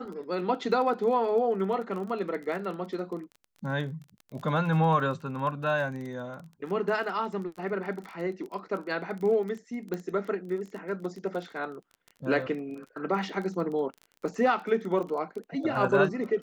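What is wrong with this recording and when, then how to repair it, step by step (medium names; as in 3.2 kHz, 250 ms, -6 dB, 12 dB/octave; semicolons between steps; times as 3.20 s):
crackle 24 per s -36 dBFS
9.94 s: pop -21 dBFS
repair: de-click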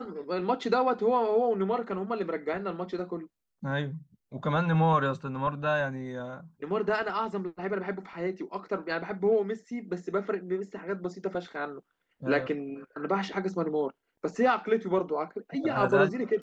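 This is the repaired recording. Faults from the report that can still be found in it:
9.94 s: pop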